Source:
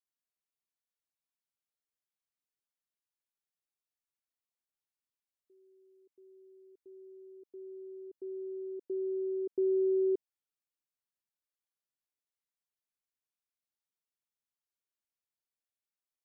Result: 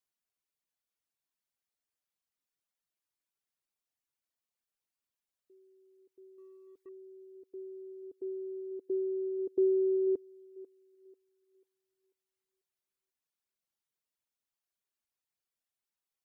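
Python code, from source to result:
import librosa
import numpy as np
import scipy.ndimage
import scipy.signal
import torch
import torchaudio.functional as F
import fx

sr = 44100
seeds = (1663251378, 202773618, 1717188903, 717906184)

y = fx.echo_thinned(x, sr, ms=492, feedback_pct=37, hz=330.0, wet_db=-16.0)
y = fx.leveller(y, sr, passes=1, at=(6.38, 6.89))
y = fx.dereverb_blind(y, sr, rt60_s=1.0)
y = y * librosa.db_to_amplitude(3.5)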